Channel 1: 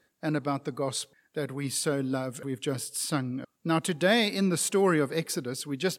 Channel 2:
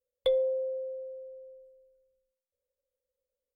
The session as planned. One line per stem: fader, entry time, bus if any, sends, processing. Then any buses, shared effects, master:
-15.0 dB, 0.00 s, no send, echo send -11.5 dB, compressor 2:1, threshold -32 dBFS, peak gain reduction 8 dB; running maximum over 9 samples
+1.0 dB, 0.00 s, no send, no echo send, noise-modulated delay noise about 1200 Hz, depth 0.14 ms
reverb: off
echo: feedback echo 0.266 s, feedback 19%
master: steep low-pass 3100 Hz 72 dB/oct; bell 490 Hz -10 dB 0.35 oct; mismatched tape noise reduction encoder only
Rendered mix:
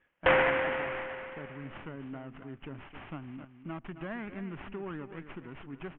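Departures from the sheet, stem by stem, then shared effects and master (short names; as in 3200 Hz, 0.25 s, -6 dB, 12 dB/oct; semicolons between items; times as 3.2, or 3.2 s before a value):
stem 1 -15.0 dB -> -8.0 dB; stem 2 +1.0 dB -> +7.5 dB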